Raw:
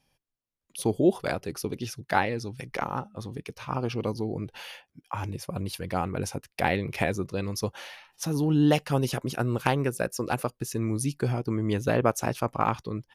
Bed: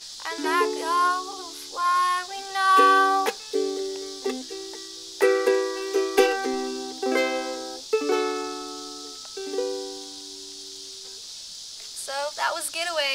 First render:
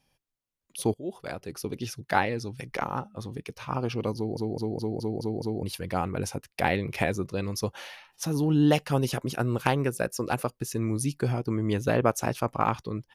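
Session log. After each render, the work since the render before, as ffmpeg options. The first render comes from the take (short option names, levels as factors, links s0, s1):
-filter_complex "[0:a]asplit=9[s0][s1][s2][s3][s4][s5][s6][s7][s8];[s0]atrim=end=0.94,asetpts=PTS-STARTPTS,afade=t=out:st=0.936:d=0.004:c=hsin:silence=0.0749894[s9];[s1]atrim=start=0.94:end=4.372,asetpts=PTS-STARTPTS,afade=t=in:d=0.9:silence=0.0749894[s10];[s2]atrim=start=4.158:end=4.372[s11];[s3]atrim=start=4.158:end=4.372[s12];[s4]atrim=start=4.158:end=4.372[s13];[s5]atrim=start=4.158:end=4.372[s14];[s6]atrim=start=4.158:end=4.372[s15];[s7]atrim=start=4.158:end=4.372[s16];[s8]atrim=start=5.628[s17];[s9][s10]concat=n=2:v=0:a=1[s18];[s18][s11]acrossfade=d=0.004:c1=hsin:c2=hsin[s19];[s19][s12]acrossfade=d=0.004:c1=hsin:c2=hsin[s20];[s20][s13]acrossfade=d=0.004:c1=hsin:c2=hsin[s21];[s21][s14]acrossfade=d=0.004:c1=hsin:c2=hsin[s22];[s22][s15]acrossfade=d=0.004:c1=hsin:c2=hsin[s23];[s23][s16]acrossfade=d=0.004:c1=hsin:c2=hsin[s24];[s24][s17]acrossfade=d=0.004:c1=hsin:c2=hsin"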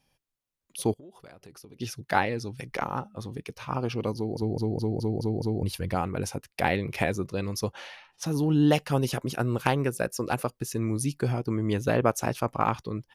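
-filter_complex "[0:a]asettb=1/sr,asplit=3[s0][s1][s2];[s0]atrim=end=0.944[s3];[s1]atrim=start=0.94:end=1.8,asetpts=PTS-STARTPTS,afade=t=in:d=0.004:c=qsin,afade=t=out:st=0.856:d=0.004:c=qsin,acompressor=threshold=0.00562:ratio=8:attack=3.2:release=140:knee=1:detection=peak[s4];[s2]atrim=start=1.796[s5];[s3][s4]acrossfade=d=0.004:c1=hsin:c2=qsin[s6];[s6][s5]acrossfade=d=0.004:c1=qsin:c2=hsin,asettb=1/sr,asplit=3[s7][s8][s9];[s7]atrim=end=4.424[s10];[s8]atrim=start=4.42:end=5.95,asetpts=PTS-STARTPTS,afade=t=in:d=0.004:c=qsin,afade=t=out:st=1.526:d=0.004:c=qsin,lowshelf=f=110:g=11[s11];[s9]atrim=start=5.946[s12];[s10][s11]acrossfade=d=0.004:c1=hsin:c2=qsin[s13];[s13][s12]acrossfade=d=0.004:c1=qsin:c2=hsin,asettb=1/sr,asplit=3[s14][s15][s16];[s14]atrim=end=7.724[s17];[s15]atrim=start=7.72:end=8.26,asetpts=PTS-STARTPTS,afade=t=in:d=0.004:c=qsin,afade=t=out:st=0.536:d=0.004:c=qsin,adynamicsmooth=sensitivity=3.5:basefreq=7800[s18];[s16]atrim=start=8.256[s19];[s17][s18]acrossfade=d=0.004:c1=hsin:c2=qsin[s20];[s20][s19]acrossfade=d=0.004:c1=qsin:c2=hsin"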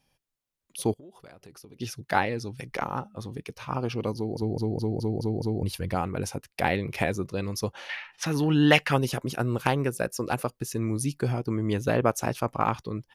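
-filter_complex "[0:a]asettb=1/sr,asplit=3[s0][s1][s2];[s0]atrim=end=7.894[s3];[s1]atrim=start=7.89:end=8.97,asetpts=PTS-STARTPTS,afade=t=in:d=0.004:c=qsin,afade=t=out:st=1.076:d=0.004:c=qsin,equalizer=f=2000:t=o:w=1.6:g=14[s4];[s2]atrim=start=8.966[s5];[s3][s4]acrossfade=d=0.004:c1=hsin:c2=qsin[s6];[s6][s5]acrossfade=d=0.004:c1=qsin:c2=hsin"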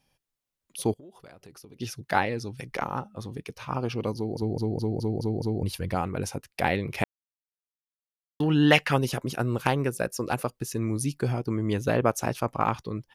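-filter_complex "[0:a]asplit=3[s0][s1][s2];[s0]atrim=end=7.04,asetpts=PTS-STARTPTS,afade=t=out:st=7.036:d=0.004:c=hsin[s3];[s1]atrim=start=7.04:end=8.4,asetpts=PTS-STARTPTS,volume=0[s4];[s2]atrim=start=8.4,asetpts=PTS-STARTPTS,afade=t=in:d=0.004:c=hsin[s5];[s3][s4][s5]concat=n=3:v=0:a=1"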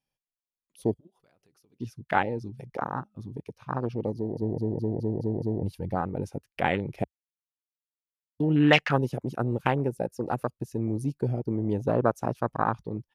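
-af "afwtdn=0.0355,equalizer=f=68:w=3.8:g=-14"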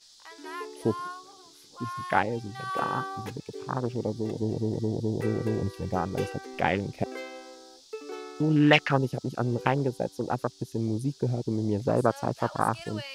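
-filter_complex "[1:a]volume=0.168[s0];[0:a][s0]amix=inputs=2:normalize=0"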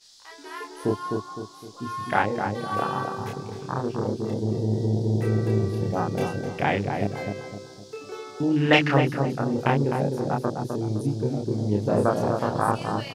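-filter_complex "[0:a]asplit=2[s0][s1];[s1]adelay=29,volume=0.794[s2];[s0][s2]amix=inputs=2:normalize=0,asplit=2[s3][s4];[s4]adelay=256,lowpass=f=1000:p=1,volume=0.668,asplit=2[s5][s6];[s6]adelay=256,lowpass=f=1000:p=1,volume=0.45,asplit=2[s7][s8];[s8]adelay=256,lowpass=f=1000:p=1,volume=0.45,asplit=2[s9][s10];[s10]adelay=256,lowpass=f=1000:p=1,volume=0.45,asplit=2[s11][s12];[s12]adelay=256,lowpass=f=1000:p=1,volume=0.45,asplit=2[s13][s14];[s14]adelay=256,lowpass=f=1000:p=1,volume=0.45[s15];[s3][s5][s7][s9][s11][s13][s15]amix=inputs=7:normalize=0"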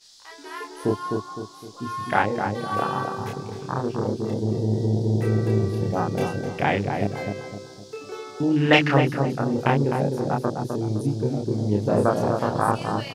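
-af "volume=1.19"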